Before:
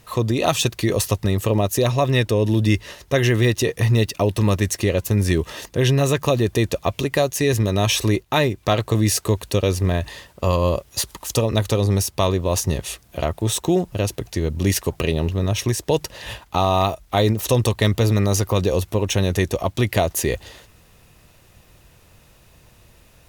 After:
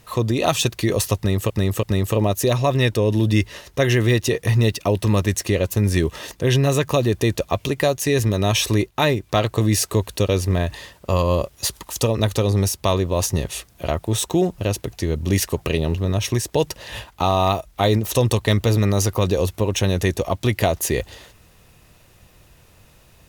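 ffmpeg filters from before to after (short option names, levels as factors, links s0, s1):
-filter_complex "[0:a]asplit=3[s0][s1][s2];[s0]atrim=end=1.502[s3];[s1]atrim=start=1.168:end=1.502[s4];[s2]atrim=start=1.168[s5];[s3][s4]acrossfade=d=0.004:c1=hsin:c2=hsin[s6];[s6][s5]acrossfade=d=0.004:c1=hsin:c2=hsin"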